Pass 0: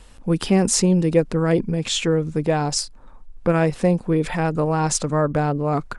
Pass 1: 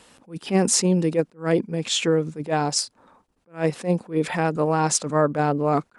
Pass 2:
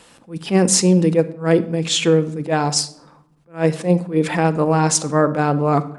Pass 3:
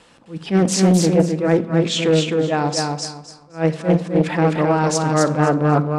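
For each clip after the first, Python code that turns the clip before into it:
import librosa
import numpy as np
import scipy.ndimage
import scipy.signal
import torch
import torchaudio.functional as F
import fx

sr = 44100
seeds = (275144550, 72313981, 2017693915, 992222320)

y1 = scipy.signal.sosfilt(scipy.signal.butter(2, 180.0, 'highpass', fs=sr, output='sos'), x)
y1 = fx.rider(y1, sr, range_db=3, speed_s=2.0)
y1 = fx.attack_slew(y1, sr, db_per_s=240.0)
y2 = fx.room_shoebox(y1, sr, seeds[0], volume_m3=1900.0, walls='furnished', distance_m=0.76)
y2 = F.gain(torch.from_numpy(y2), 4.0).numpy()
y3 = fx.air_absorb(y2, sr, metres=62.0)
y3 = fx.echo_feedback(y3, sr, ms=258, feedback_pct=22, wet_db=-3.5)
y3 = fx.doppler_dist(y3, sr, depth_ms=0.38)
y3 = F.gain(torch.from_numpy(y3), -1.0).numpy()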